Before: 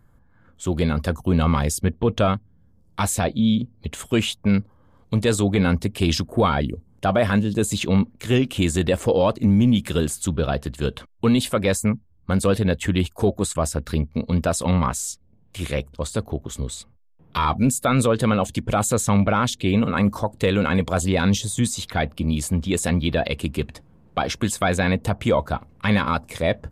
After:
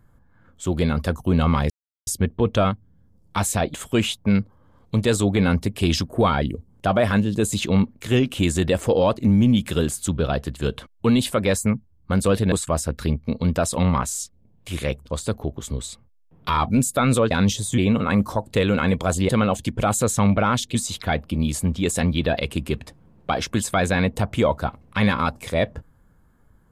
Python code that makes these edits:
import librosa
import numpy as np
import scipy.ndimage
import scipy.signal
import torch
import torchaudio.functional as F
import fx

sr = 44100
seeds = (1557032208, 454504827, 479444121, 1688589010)

y = fx.edit(x, sr, fx.insert_silence(at_s=1.7, length_s=0.37),
    fx.cut(start_s=3.37, length_s=0.56),
    fx.cut(start_s=12.71, length_s=0.69),
    fx.swap(start_s=18.19, length_s=1.46, other_s=21.16, other_length_s=0.47), tone=tone)